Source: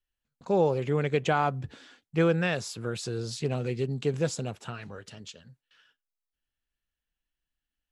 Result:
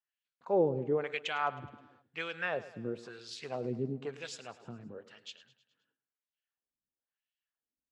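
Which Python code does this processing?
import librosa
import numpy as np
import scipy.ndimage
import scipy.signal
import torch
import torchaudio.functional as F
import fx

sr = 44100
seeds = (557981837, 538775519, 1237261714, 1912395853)

y = fx.filter_lfo_bandpass(x, sr, shape='sine', hz=0.99, low_hz=220.0, high_hz=3100.0, q=1.5)
y = fx.echo_feedback(y, sr, ms=105, feedback_pct=54, wet_db=-16.5)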